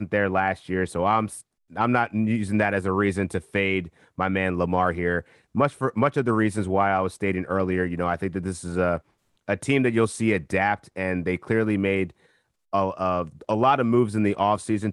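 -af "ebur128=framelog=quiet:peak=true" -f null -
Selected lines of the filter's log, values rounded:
Integrated loudness:
  I:         -24.2 LUFS
  Threshold: -34.5 LUFS
Loudness range:
  LRA:         1.5 LU
  Threshold: -44.7 LUFS
  LRA low:   -25.5 LUFS
  LRA high:  -24.0 LUFS
True peak:
  Peak:       -7.6 dBFS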